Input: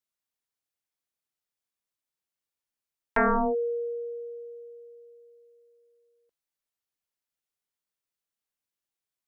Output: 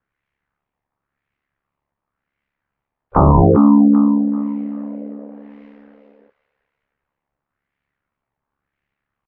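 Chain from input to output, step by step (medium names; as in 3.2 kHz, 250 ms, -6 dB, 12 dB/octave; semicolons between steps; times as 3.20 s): dynamic bell 190 Hz, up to +3 dB, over -47 dBFS, Q 3.2; LFO low-pass sine 0.93 Hz 910–2200 Hz; doubling 24 ms -10.5 dB; formant-preserving pitch shift -11 st; tone controls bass +10 dB, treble -10 dB; feedback echo behind a high-pass 390 ms, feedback 35%, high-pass 1.6 kHz, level -7.5 dB; ring modulator 35 Hz; loudness maximiser +20 dB; trim -1 dB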